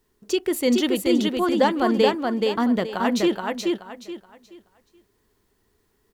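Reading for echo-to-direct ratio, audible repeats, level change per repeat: −2.5 dB, 3, −11.5 dB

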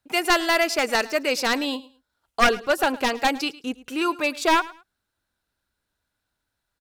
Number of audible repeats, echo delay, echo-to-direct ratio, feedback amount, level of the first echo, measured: 2, 107 ms, −19.5 dB, 22%, −19.5 dB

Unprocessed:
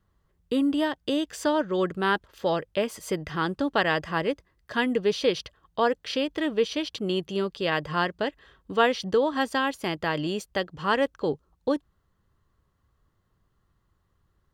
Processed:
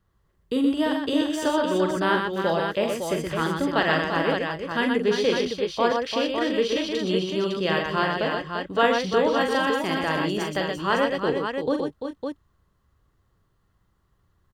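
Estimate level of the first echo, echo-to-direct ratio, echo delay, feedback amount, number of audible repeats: −6.5 dB, 0.0 dB, 43 ms, repeats not evenly spaced, 4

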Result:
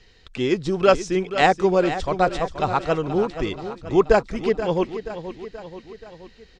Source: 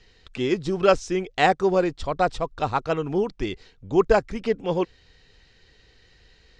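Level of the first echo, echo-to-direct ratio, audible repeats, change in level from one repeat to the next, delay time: −11.5 dB, −10.0 dB, 4, −5.0 dB, 479 ms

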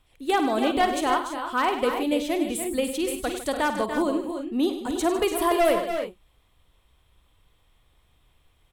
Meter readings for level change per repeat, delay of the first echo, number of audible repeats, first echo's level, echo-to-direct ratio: repeats not evenly spaced, 51 ms, 5, −11.5 dB, −4.0 dB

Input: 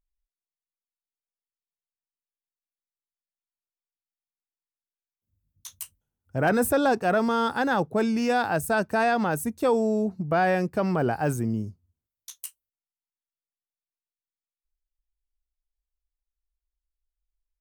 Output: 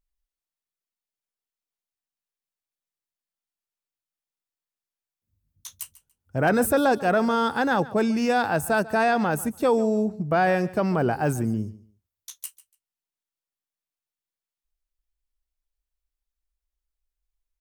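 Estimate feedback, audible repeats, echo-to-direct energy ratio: 20%, 2, −18.5 dB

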